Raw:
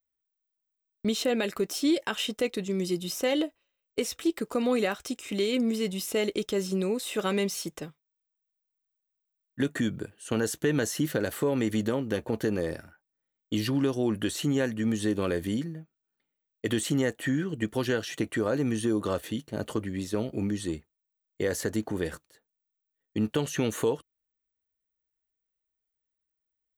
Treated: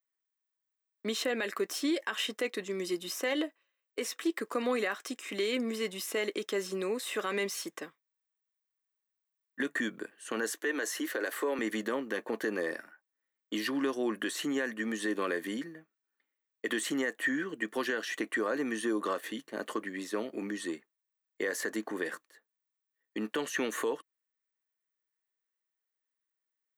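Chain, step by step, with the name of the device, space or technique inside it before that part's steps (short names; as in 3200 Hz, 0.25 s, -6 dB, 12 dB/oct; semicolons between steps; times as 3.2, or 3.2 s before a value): laptop speaker (HPF 250 Hz 24 dB/oct; bell 1100 Hz +9 dB 0.2 oct; bell 1800 Hz +10 dB 0.59 oct; limiter -18 dBFS, peak gain reduction 8 dB); 10.5–11.59 HPF 290 Hz 24 dB/oct; gain -3.5 dB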